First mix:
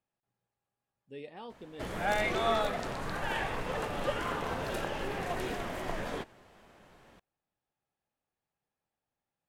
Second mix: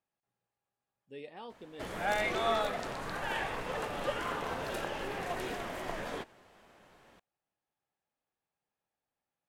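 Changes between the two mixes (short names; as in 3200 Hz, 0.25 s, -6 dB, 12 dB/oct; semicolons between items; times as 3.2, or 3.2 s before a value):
background: send off; master: add low shelf 220 Hz -6 dB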